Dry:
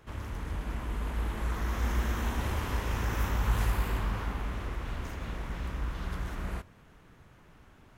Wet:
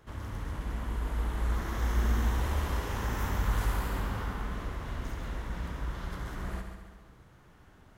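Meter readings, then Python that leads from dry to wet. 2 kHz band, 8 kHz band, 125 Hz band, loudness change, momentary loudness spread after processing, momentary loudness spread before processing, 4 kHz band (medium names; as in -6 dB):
-1.0 dB, 0.0 dB, 0.0 dB, 0.0 dB, 9 LU, 9 LU, -1.0 dB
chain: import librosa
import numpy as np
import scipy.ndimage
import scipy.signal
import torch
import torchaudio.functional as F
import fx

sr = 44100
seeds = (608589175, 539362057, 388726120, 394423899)

y = fx.peak_eq(x, sr, hz=2500.0, db=-5.0, octaves=0.35)
y = fx.echo_heads(y, sr, ms=69, heads='first and second', feedback_pct=56, wet_db=-10)
y = y * librosa.db_to_amplitude(-1.5)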